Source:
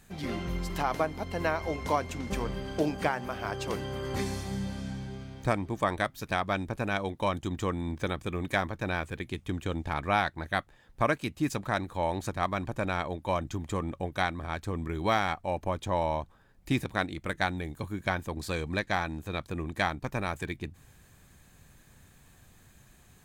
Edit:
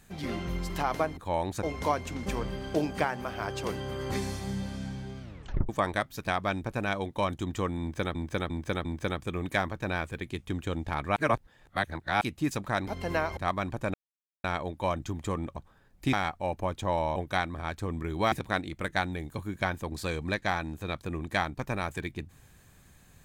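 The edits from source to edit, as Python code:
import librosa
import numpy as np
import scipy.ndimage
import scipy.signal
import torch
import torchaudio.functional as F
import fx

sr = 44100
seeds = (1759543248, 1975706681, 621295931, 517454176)

y = fx.edit(x, sr, fx.swap(start_s=1.17, length_s=0.5, other_s=11.86, other_length_s=0.46),
    fx.tape_stop(start_s=5.25, length_s=0.48),
    fx.repeat(start_s=7.84, length_s=0.35, count=4),
    fx.reverse_span(start_s=10.15, length_s=1.05),
    fx.insert_silence(at_s=12.89, length_s=0.5),
    fx.swap(start_s=14.01, length_s=1.16, other_s=16.2, other_length_s=0.57), tone=tone)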